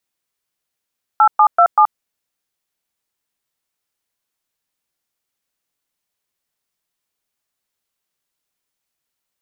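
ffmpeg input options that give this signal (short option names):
-f lavfi -i "aevalsrc='0.335*clip(min(mod(t,0.192),0.077-mod(t,0.192))/0.002,0,1)*(eq(floor(t/0.192),0)*(sin(2*PI*852*mod(t,0.192))+sin(2*PI*1336*mod(t,0.192)))+eq(floor(t/0.192),1)*(sin(2*PI*852*mod(t,0.192))+sin(2*PI*1209*mod(t,0.192)))+eq(floor(t/0.192),2)*(sin(2*PI*697*mod(t,0.192))+sin(2*PI*1336*mod(t,0.192)))+eq(floor(t/0.192),3)*(sin(2*PI*852*mod(t,0.192))+sin(2*PI*1209*mod(t,0.192))))':d=0.768:s=44100"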